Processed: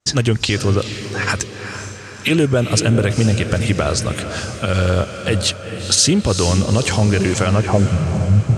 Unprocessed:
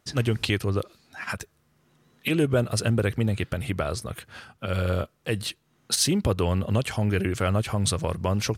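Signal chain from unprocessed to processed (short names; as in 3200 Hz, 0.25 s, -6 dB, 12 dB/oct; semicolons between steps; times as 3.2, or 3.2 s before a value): expander -58 dBFS; in parallel at 0 dB: compressor, threshold -34 dBFS, peak gain reduction 15.5 dB; on the sum: limiter -14 dBFS, peak gain reduction 6.5 dB; low-pass sweep 7100 Hz -> 140 Hz, 7.43–7.95; on a send: diffused feedback echo 0.454 s, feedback 53%, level -9 dB; on the sum: gain +7.5 dB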